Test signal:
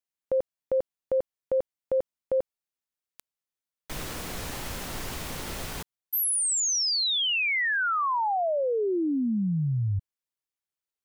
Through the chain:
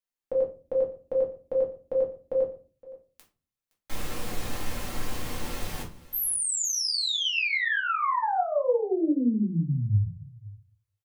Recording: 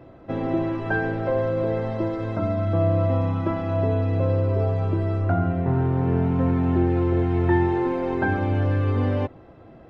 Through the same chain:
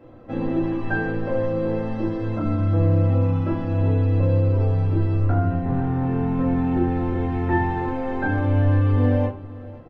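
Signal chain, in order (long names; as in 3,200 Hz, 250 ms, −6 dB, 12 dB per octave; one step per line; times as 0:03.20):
on a send: single-tap delay 516 ms −19.5 dB
on the sum: rectangular room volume 170 cubic metres, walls furnished, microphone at 2.2 metres
level −5.5 dB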